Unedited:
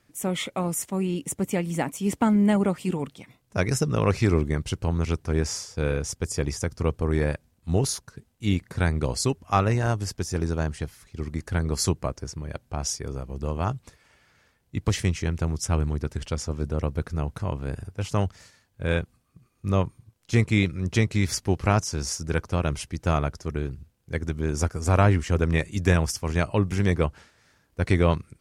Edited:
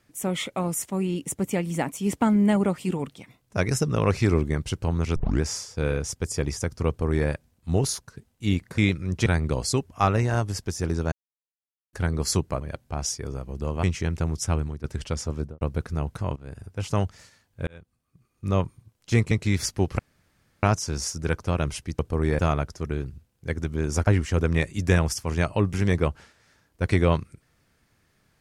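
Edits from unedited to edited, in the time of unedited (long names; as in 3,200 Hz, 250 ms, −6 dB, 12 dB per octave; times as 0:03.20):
0:05.16: tape start 0.25 s
0:06.88–0:07.28: duplicate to 0:23.04
0:10.64–0:11.45: silence
0:12.13–0:12.42: remove
0:13.64–0:15.04: remove
0:15.71–0:16.05: fade out, to −12.5 dB
0:16.57–0:16.82: fade out and dull
0:17.57–0:18.05: fade in, from −17 dB
0:18.88–0:19.82: fade in linear
0:20.52–0:21.00: move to 0:08.78
0:21.68: splice in room tone 0.64 s
0:24.72–0:25.05: remove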